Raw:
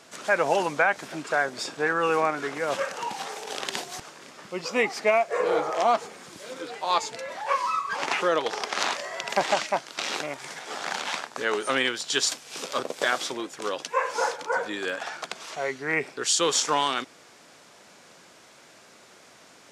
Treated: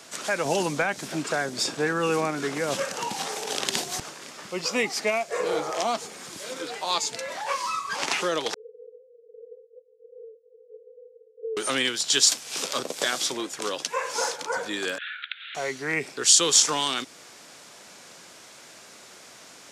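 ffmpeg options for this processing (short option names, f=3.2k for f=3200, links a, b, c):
-filter_complex "[0:a]asettb=1/sr,asplit=3[a][b][c];[a]atrim=end=0.454[d];[b]atrim=start=0.45:end=4.14,asetpts=PTS-STARTPTS,afade=t=in:d=0.004:c=qsin,afade=t=out:st=3.686:d=0.004:c=qsin,lowshelf=f=460:g=6[e];[c]atrim=start=4.136[f];[d][e]acrossfade=d=0.004:c1=hsin:c2=qsin[g];[g][f]acrossfade=d=0.004:c1=qsin:c2=hsin,asettb=1/sr,asplit=3[h][i][j];[h]atrim=end=8.544[k];[i]atrim=start=8.54:end=11.57,asetpts=PTS-STARTPTS,afade=t=in:d=0.004:c=qsin,afade=t=out:st=3.026:d=0.004:c=qsin,asuperpass=centerf=470:order=12:qfactor=6.4[l];[j]atrim=start=11.566[m];[k][l]acrossfade=d=0.004:c1=hsin:c2=qsin[n];[n][m]acrossfade=d=0.004:c1=qsin:c2=hsin,asettb=1/sr,asplit=3[o][p][q];[o]atrim=end=14.984[r];[p]atrim=start=14.98:end=15.55,asetpts=PTS-STARTPTS,afade=t=in:d=0.004:c=qsin,afade=t=out:st=0.566:d=0.004:c=qsin,asuperpass=centerf=2300:order=20:qfactor=0.92[s];[q]atrim=start=15.546[t];[r][s]acrossfade=d=0.004:c1=hsin:c2=qsin[u];[u][t]acrossfade=d=0.004:c1=qsin:c2=hsin,highshelf=f=3.5k:g=7,acrossover=split=350|3000[v][w][x];[w]acompressor=threshold=-34dB:ratio=2[y];[v][y][x]amix=inputs=3:normalize=0,volume=2dB"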